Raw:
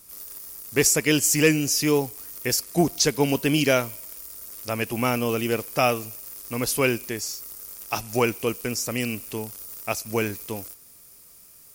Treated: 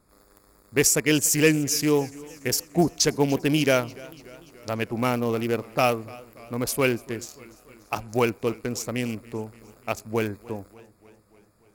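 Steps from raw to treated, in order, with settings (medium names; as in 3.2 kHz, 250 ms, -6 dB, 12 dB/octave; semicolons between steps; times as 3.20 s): local Wiener filter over 15 samples; modulated delay 292 ms, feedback 62%, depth 96 cents, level -21.5 dB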